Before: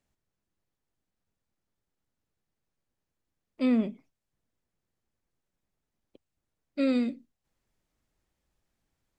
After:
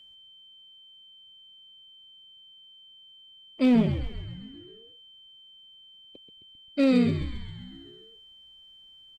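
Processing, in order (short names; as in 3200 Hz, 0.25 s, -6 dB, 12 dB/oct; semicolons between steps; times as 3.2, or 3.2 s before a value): one-sided clip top -22.5 dBFS, bottom -19.5 dBFS; frequency-shifting echo 0.132 s, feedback 63%, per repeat -86 Hz, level -9 dB; whine 3100 Hz -55 dBFS; gain +5 dB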